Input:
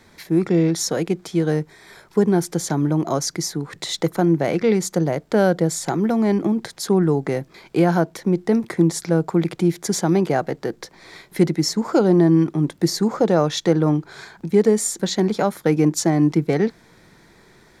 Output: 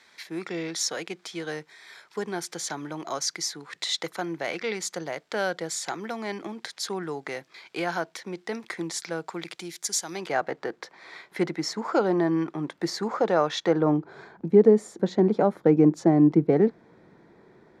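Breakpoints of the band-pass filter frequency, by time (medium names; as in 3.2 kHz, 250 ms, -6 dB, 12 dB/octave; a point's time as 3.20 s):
band-pass filter, Q 0.62
9.24 s 3 kHz
10.01 s 7.7 kHz
10.44 s 1.4 kHz
13.58 s 1.4 kHz
14.13 s 390 Hz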